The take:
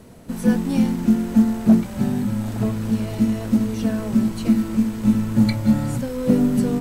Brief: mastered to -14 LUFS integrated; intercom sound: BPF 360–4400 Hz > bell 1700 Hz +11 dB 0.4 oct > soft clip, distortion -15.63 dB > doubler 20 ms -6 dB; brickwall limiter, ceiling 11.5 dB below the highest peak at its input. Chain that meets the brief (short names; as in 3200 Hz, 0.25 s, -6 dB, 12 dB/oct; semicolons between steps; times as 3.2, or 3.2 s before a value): limiter -18 dBFS; BPF 360–4400 Hz; bell 1700 Hz +11 dB 0.4 oct; soft clip -29 dBFS; doubler 20 ms -6 dB; gain +21 dB